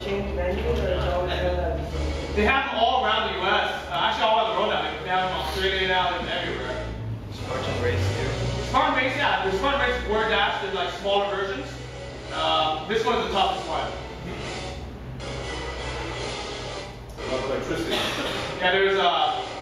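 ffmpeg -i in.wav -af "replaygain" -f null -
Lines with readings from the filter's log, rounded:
track_gain = +4.3 dB
track_peak = 0.288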